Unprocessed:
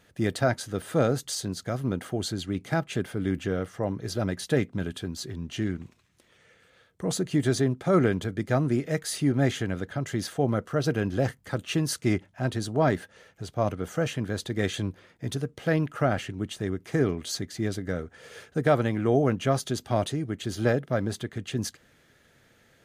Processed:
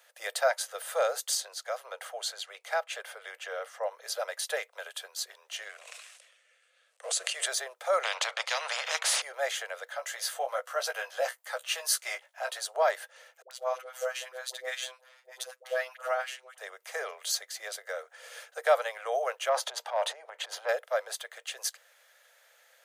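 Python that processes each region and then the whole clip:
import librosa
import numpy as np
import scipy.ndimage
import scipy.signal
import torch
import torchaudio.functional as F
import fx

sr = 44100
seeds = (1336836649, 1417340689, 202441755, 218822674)

y = fx.chain(x, sr, fx.highpass(hz=320.0, slope=12),
    fx.high_shelf(hz=8400.0, db=-8.0), at=(1.37, 3.92))
y = fx.chain(y, sr, fx.law_mismatch(coded='A'),
    fx.cabinet(low_hz=360.0, low_slope=12, high_hz=9900.0, hz=(900.0, 2700.0, 8300.0), db=(-9, 5, 4)),
    fx.sustainer(db_per_s=45.0), at=(5.69, 7.46))
y = fx.chain(y, sr, fx.bandpass_edges(low_hz=140.0, high_hz=3400.0),
    fx.spectral_comp(ratio=4.0), at=(8.03, 9.22))
y = fx.chain(y, sr, fx.highpass(hz=490.0, slope=12),
    fx.doubler(ms=16.0, db=-5.5), at=(9.85, 12.64))
y = fx.chain(y, sr, fx.high_shelf(hz=11000.0, db=-3.0),
    fx.robotise(hz=128.0),
    fx.dispersion(late='highs', ms=91.0, hz=570.0), at=(13.42, 16.58))
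y = fx.chain(y, sr, fx.lowpass(hz=1500.0, slope=6),
    fx.peak_eq(hz=930.0, db=7.5, octaves=0.22),
    fx.transient(attack_db=-7, sustain_db=10), at=(19.49, 20.69))
y = scipy.signal.sosfilt(scipy.signal.butter(12, 510.0, 'highpass', fs=sr, output='sos'), y)
y = fx.high_shelf(y, sr, hz=8800.0, db=9.0)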